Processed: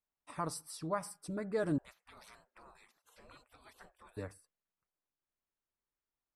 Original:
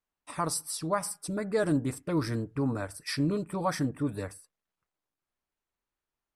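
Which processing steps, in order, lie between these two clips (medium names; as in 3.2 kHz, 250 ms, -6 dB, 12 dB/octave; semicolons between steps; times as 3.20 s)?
1.78–4.17 s: spectral gate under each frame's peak -25 dB weak; treble shelf 3.9 kHz -7 dB; trim -6.5 dB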